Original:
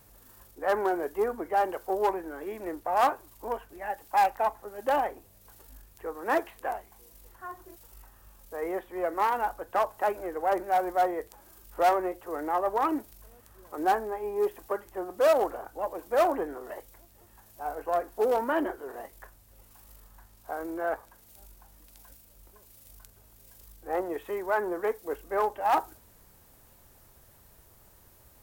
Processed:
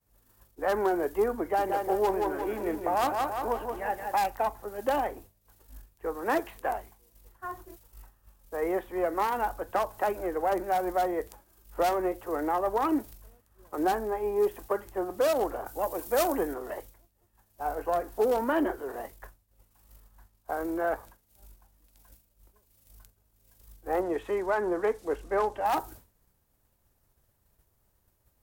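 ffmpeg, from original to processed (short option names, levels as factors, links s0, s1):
-filter_complex "[0:a]asettb=1/sr,asplit=3[s0][s1][s2];[s0]atrim=end=1.414[s3];[s1]atrim=start=1.41:end=4.16,asetpts=PTS-STARTPTS,afade=t=in:d=0.004:c=qsin,afade=t=out:st=2.746:d=0.004:c=qsin,aecho=1:1:174|348|522|696|870:0.501|0.216|0.0927|0.0398|0.0171,atrim=end_sample=121275[s4];[s2]atrim=start=4.156[s5];[s3][s4]acrossfade=d=0.004:c1=hsin:c2=qsin[s6];[s6][s5]acrossfade=d=0.004:c1=qsin:c2=hsin,asettb=1/sr,asplit=3[s7][s8][s9];[s7]atrim=end=15.664[s10];[s8]atrim=start=15.66:end=16.54,asetpts=PTS-STARTPTS,afade=t=in:d=0.004:c=qsin,afade=t=out:st=0.876:d=0.004:c=qsin,highshelf=f=4600:g=11[s11];[s9]atrim=start=16.536[s12];[s10][s11]acrossfade=d=0.004:c1=hsin:c2=qsin[s13];[s13][s12]acrossfade=d=0.004:c1=qsin:c2=hsin,asettb=1/sr,asplit=3[s14][s15][s16];[s14]atrim=end=24.014[s17];[s15]atrim=start=24.01:end=25.66,asetpts=PTS-STARTPTS,afade=t=in:d=0.004:c=qsin,afade=t=out:st=1.646:d=0.004:c=qsin,lowpass=8600[s18];[s16]atrim=start=25.656[s19];[s17][s18]acrossfade=d=0.004:c1=hsin:c2=qsin[s20];[s20][s19]acrossfade=d=0.004:c1=qsin:c2=hsin,agate=range=0.0224:threshold=0.00562:ratio=3:detection=peak,lowshelf=f=220:g=5,acrossover=split=320|3000[s21][s22][s23];[s22]acompressor=threshold=0.0447:ratio=6[s24];[s21][s24][s23]amix=inputs=3:normalize=0,volume=1.33"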